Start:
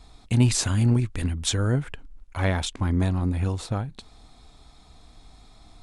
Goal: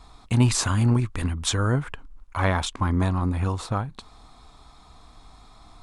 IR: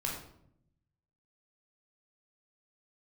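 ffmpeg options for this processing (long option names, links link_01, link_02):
-af "equalizer=frequency=1100:width=1.8:gain=10"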